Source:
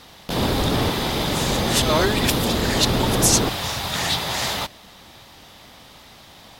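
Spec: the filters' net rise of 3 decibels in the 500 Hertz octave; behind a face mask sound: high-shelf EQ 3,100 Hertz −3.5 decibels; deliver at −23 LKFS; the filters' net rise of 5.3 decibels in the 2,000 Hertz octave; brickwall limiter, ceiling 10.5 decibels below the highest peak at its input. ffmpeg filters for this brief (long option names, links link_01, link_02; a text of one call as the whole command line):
ffmpeg -i in.wav -af "equalizer=frequency=500:width_type=o:gain=3.5,equalizer=frequency=2000:width_type=o:gain=7.5,alimiter=limit=-12dB:level=0:latency=1,highshelf=frequency=3100:gain=-3.5,volume=-1dB" out.wav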